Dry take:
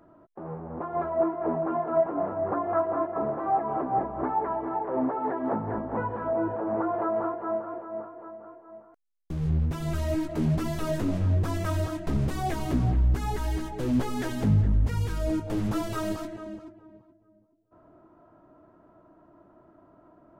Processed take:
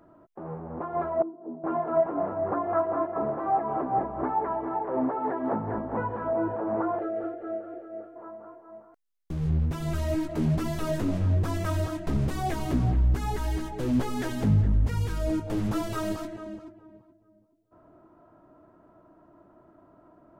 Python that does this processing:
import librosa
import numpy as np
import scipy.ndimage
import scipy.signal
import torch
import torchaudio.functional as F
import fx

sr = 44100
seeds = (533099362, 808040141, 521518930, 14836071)

y = fx.ladder_bandpass(x, sr, hz=290.0, resonance_pct=50, at=(1.22, 1.64))
y = fx.fixed_phaser(y, sr, hz=410.0, stages=4, at=(6.99, 8.16))